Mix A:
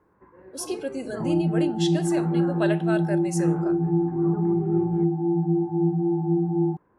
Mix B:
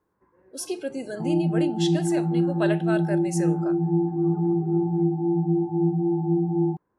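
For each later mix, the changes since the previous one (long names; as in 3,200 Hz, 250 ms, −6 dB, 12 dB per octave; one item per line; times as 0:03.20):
first sound −10.5 dB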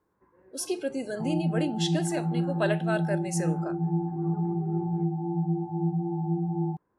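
second sound: add parametric band 320 Hz −10 dB 1.1 octaves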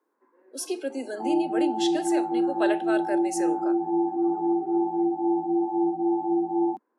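second sound +9.5 dB
master: add Butterworth high-pass 230 Hz 72 dB per octave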